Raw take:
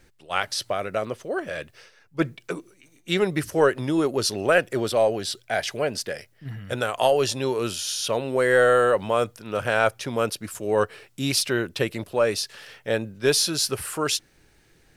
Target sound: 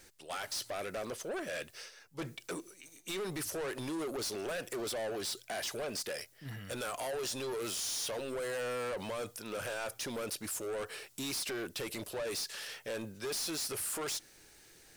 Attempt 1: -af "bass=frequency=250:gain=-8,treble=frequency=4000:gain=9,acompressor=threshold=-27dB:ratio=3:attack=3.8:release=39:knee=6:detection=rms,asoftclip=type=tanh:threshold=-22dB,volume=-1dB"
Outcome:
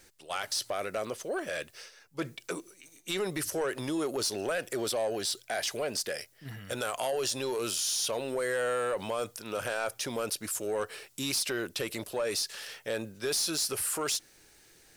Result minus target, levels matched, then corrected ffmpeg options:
soft clipping: distortion −10 dB
-af "bass=frequency=250:gain=-8,treble=frequency=4000:gain=9,acompressor=threshold=-27dB:ratio=3:attack=3.8:release=39:knee=6:detection=rms,asoftclip=type=tanh:threshold=-33.5dB,volume=-1dB"

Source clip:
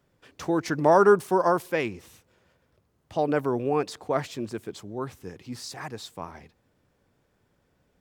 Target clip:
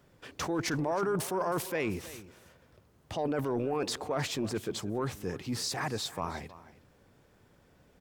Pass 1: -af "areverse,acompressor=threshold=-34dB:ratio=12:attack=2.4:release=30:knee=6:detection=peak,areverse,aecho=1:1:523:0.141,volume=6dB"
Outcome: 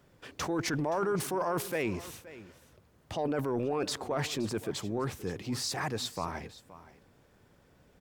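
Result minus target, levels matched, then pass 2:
echo 205 ms late
-af "areverse,acompressor=threshold=-34dB:ratio=12:attack=2.4:release=30:knee=6:detection=peak,areverse,aecho=1:1:318:0.141,volume=6dB"

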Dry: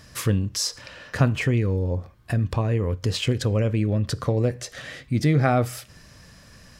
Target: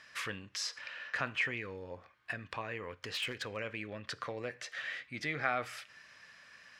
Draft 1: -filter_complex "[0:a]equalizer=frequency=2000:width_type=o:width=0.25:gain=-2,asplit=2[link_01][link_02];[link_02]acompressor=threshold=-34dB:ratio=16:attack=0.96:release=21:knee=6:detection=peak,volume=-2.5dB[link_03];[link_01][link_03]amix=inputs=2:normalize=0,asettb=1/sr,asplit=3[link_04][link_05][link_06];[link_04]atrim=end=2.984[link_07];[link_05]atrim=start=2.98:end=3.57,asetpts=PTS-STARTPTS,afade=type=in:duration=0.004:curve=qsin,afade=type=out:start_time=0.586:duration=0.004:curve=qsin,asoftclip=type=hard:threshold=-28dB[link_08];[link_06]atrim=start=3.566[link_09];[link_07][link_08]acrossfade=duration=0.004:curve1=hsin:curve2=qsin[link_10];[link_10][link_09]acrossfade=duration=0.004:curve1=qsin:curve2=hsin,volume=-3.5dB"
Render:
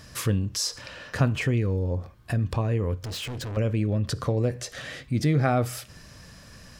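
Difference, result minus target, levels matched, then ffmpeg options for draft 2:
2,000 Hz band −11.5 dB
-filter_complex "[0:a]bandpass=frequency=2000:width_type=q:width=1.6:csg=0,equalizer=frequency=2000:width_type=o:width=0.25:gain=-2,asplit=2[link_01][link_02];[link_02]acompressor=threshold=-34dB:ratio=16:attack=0.96:release=21:knee=6:detection=peak,volume=-2.5dB[link_03];[link_01][link_03]amix=inputs=2:normalize=0,asettb=1/sr,asplit=3[link_04][link_05][link_06];[link_04]atrim=end=2.984[link_07];[link_05]atrim=start=2.98:end=3.57,asetpts=PTS-STARTPTS,afade=type=in:duration=0.004:curve=qsin,afade=type=out:start_time=0.586:duration=0.004:curve=qsin,asoftclip=type=hard:threshold=-28dB[link_08];[link_06]atrim=start=3.566[link_09];[link_07][link_08]acrossfade=duration=0.004:curve1=hsin:curve2=qsin[link_10];[link_10][link_09]acrossfade=duration=0.004:curve1=qsin:curve2=hsin,volume=-3.5dB"

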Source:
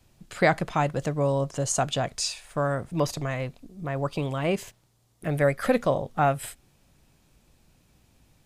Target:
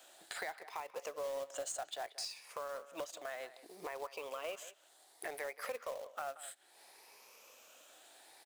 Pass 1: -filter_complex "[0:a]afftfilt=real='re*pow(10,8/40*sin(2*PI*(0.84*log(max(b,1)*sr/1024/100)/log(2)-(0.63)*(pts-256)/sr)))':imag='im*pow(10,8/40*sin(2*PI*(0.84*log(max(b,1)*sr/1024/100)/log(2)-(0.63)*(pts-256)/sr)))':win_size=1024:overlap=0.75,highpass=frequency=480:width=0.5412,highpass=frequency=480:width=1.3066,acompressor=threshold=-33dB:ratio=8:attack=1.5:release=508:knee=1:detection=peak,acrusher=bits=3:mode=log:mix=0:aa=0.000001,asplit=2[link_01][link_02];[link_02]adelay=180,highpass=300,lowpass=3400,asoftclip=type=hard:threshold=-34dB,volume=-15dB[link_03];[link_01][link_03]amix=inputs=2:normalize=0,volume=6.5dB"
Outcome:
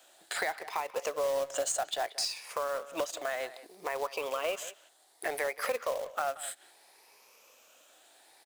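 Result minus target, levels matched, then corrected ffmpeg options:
downward compressor: peak gain reduction −9.5 dB
-filter_complex "[0:a]afftfilt=real='re*pow(10,8/40*sin(2*PI*(0.84*log(max(b,1)*sr/1024/100)/log(2)-(0.63)*(pts-256)/sr)))':imag='im*pow(10,8/40*sin(2*PI*(0.84*log(max(b,1)*sr/1024/100)/log(2)-(0.63)*(pts-256)/sr)))':win_size=1024:overlap=0.75,highpass=frequency=480:width=0.5412,highpass=frequency=480:width=1.3066,acompressor=threshold=-44dB:ratio=8:attack=1.5:release=508:knee=1:detection=peak,acrusher=bits=3:mode=log:mix=0:aa=0.000001,asplit=2[link_01][link_02];[link_02]adelay=180,highpass=300,lowpass=3400,asoftclip=type=hard:threshold=-34dB,volume=-15dB[link_03];[link_01][link_03]amix=inputs=2:normalize=0,volume=6.5dB"

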